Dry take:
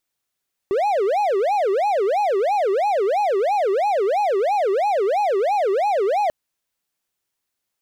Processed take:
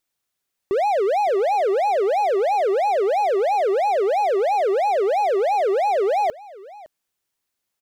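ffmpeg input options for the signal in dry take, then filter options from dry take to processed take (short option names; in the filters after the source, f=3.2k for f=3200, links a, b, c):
-f lavfi -i "aevalsrc='0.188*(1-4*abs(mod((611*t-230/(2*PI*3)*sin(2*PI*3*t))+0.25,1)-0.5))':d=5.59:s=44100"
-af "aecho=1:1:561:0.0891"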